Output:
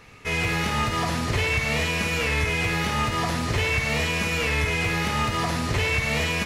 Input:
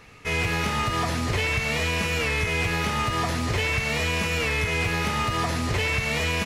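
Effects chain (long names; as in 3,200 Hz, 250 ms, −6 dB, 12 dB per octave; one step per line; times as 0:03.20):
flutter between parallel walls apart 9.3 metres, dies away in 0.4 s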